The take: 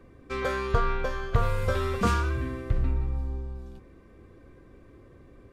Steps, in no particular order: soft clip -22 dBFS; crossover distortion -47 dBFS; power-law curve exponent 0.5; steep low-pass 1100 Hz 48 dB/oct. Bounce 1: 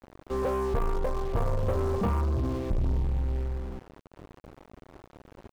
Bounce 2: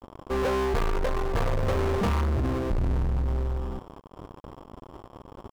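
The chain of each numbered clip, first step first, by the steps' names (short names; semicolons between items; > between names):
soft clip > steep low-pass > crossover distortion > power-law curve; crossover distortion > steep low-pass > power-law curve > soft clip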